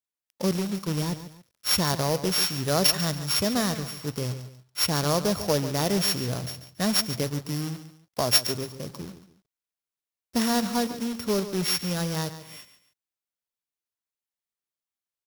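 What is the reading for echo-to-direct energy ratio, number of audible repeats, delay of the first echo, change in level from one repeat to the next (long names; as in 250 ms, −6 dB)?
−12.0 dB, 2, 141 ms, −10.0 dB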